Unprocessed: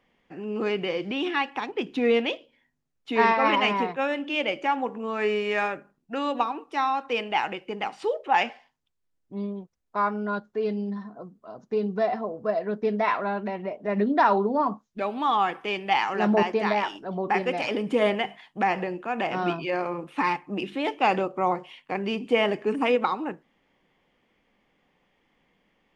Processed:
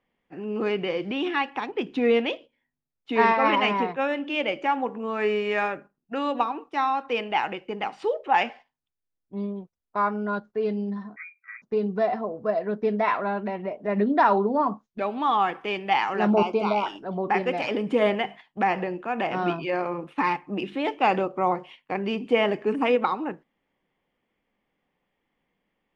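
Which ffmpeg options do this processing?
-filter_complex "[0:a]asettb=1/sr,asplit=3[a][b][c];[a]atrim=end=11.164[d];[b]atrim=start=11.16:end=11.62,asetpts=PTS-STARTPTS,afade=t=in:d=0.004:c=qsin,afade=t=out:st=0.456:d=0.004:c=qsin,lowpass=f=2.2k:t=q:w=0.5098,lowpass=f=2.2k:t=q:w=0.6013,lowpass=f=2.2k:t=q:w=0.9,lowpass=f=2.2k:t=q:w=2.563,afreqshift=-2600[e];[c]atrim=start=11.616[f];[d][e]acrossfade=d=0.004:c1=hsin:c2=qsin[g];[g][f]acrossfade=d=0.004:c1=qsin:c2=hsin,asettb=1/sr,asplit=3[h][i][j];[h]atrim=end=16.304[k];[i]atrim=start=16.3:end=16.86,asetpts=PTS-STARTPTS,afade=t=in:d=0.004:c=qsin,afade=t=out:st=0.556:d=0.004:c=qsin,asuperstop=centerf=1800:order=8:qfactor=2.6[l];[j]atrim=start=16.856[m];[k][l]acrossfade=d=0.004:c1=hsin:c2=qsin[n];[n][m]acrossfade=d=0.004:c1=qsin:c2=hsin,agate=range=-9dB:threshold=-44dB:ratio=16:detection=peak,highshelf=f=5.6k:g=-10,volume=1dB"

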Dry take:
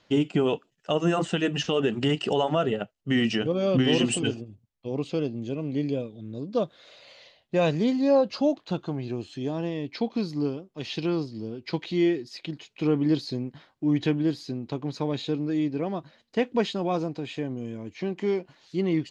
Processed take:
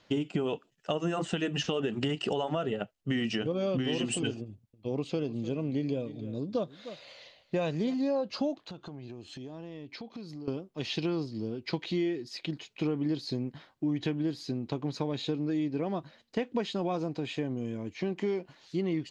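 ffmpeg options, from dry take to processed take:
-filter_complex "[0:a]asettb=1/sr,asplit=3[a][b][c];[a]atrim=end=4.434[d];[b]atrim=start=4.43:end=7.94,asetpts=PTS-STARTPTS,afade=t=in:d=0.004:c=qsin,afade=t=out:st=3.506:d=0.004:c=qsin,aecho=1:1:303:0.126,atrim=end_sample=154791[e];[c]atrim=start=7.936[f];[d][e]acrossfade=d=0.004:c1=hsin:c2=qsin[g];[g][f]acrossfade=d=0.004:c1=qsin:c2=hsin,asettb=1/sr,asplit=3[h][i][j];[h]atrim=end=8.604[k];[i]atrim=start=8.6:end=10.48,asetpts=PTS-STARTPTS,afade=t=in:d=0.004:c=qsin,afade=t=out:st=1.876:d=0.004:c=qsin,acompressor=threshold=-40dB:ratio=6:attack=3.2:release=140:knee=1:detection=peak[l];[j]atrim=start=10.476[m];[k][l]acrossfade=d=0.004:c1=hsin:c2=qsin[n];[n][m]acrossfade=d=0.004:c1=qsin:c2=hsin,acompressor=threshold=-27dB:ratio=6"

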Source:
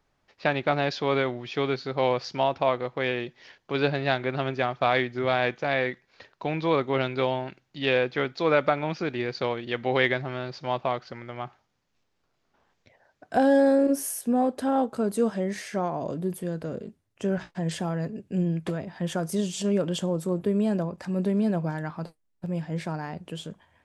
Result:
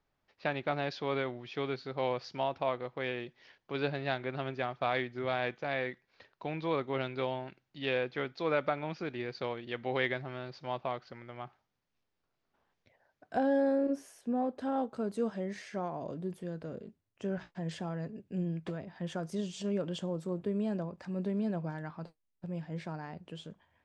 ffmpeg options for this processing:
-filter_complex "[0:a]asettb=1/sr,asplit=3[a][b][c];[a]atrim=end=13.394[d];[b]atrim=start=13.39:end=14.61,asetpts=PTS-STARTPTS,afade=t=in:d=0.004:c=qsin,afade=t=out:st=1.216:d=0.004:c=qsin,highshelf=f=3.9k:g=-8[e];[c]atrim=start=14.606[f];[d][e]acrossfade=d=0.004:c1=hsin:c2=qsin[g];[g][f]acrossfade=d=0.004:c1=qsin:c2=hsin,lowpass=5.9k,volume=-8.5dB"

